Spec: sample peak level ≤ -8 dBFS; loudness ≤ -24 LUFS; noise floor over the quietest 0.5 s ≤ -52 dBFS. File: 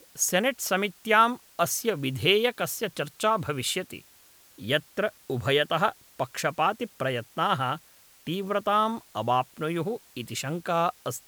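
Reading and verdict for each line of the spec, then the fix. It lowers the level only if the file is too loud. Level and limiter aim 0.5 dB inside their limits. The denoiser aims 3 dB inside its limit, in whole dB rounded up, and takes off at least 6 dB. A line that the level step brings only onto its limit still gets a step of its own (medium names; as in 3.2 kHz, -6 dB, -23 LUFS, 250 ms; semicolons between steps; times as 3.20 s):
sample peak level -7.0 dBFS: fail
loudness -27.0 LUFS: pass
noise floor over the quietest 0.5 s -56 dBFS: pass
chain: peak limiter -8.5 dBFS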